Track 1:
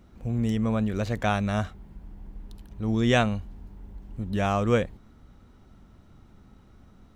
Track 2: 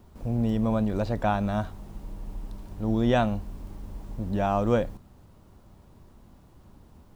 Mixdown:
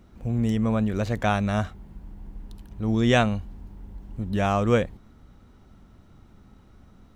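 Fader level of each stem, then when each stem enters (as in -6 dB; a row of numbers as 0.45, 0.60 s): +1.0, -17.0 dB; 0.00, 0.00 s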